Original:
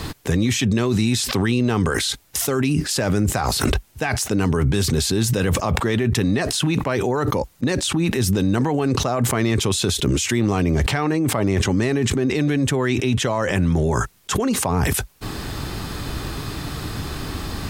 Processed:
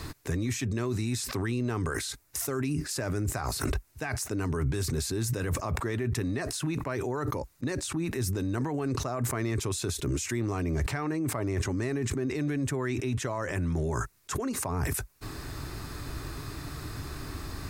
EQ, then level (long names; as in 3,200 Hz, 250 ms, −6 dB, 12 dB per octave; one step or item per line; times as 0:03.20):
dynamic equaliser 3,600 Hz, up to −5 dB, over −38 dBFS, Q 1
thirty-one-band graphic EQ 200 Hz −11 dB, 500 Hz −5 dB, 800 Hz −5 dB, 3,150 Hz −7 dB
−8.5 dB